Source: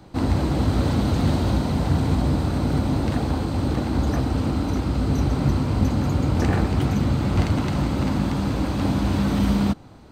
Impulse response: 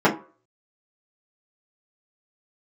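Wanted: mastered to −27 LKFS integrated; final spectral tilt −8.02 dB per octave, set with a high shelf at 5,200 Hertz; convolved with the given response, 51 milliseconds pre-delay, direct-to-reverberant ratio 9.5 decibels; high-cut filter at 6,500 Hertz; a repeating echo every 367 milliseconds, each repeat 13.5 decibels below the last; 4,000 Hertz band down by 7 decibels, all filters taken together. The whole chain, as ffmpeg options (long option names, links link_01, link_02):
-filter_complex "[0:a]lowpass=6500,equalizer=frequency=4000:width_type=o:gain=-6.5,highshelf=frequency=5200:gain=-4,aecho=1:1:367|734:0.211|0.0444,asplit=2[link_01][link_02];[1:a]atrim=start_sample=2205,adelay=51[link_03];[link_02][link_03]afir=irnorm=-1:irlink=0,volume=-30.5dB[link_04];[link_01][link_04]amix=inputs=2:normalize=0,volume=-5.5dB"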